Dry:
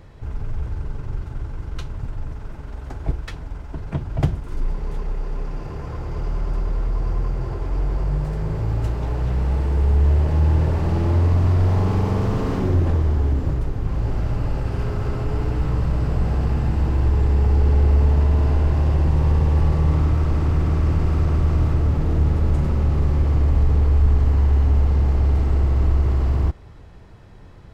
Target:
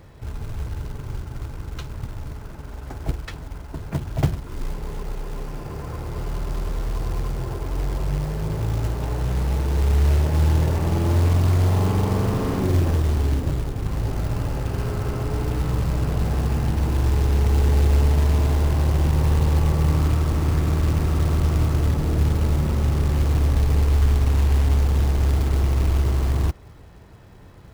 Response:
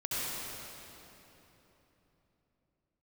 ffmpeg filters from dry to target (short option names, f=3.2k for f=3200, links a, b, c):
-af "highpass=f=49:p=1,acrusher=bits=5:mode=log:mix=0:aa=0.000001"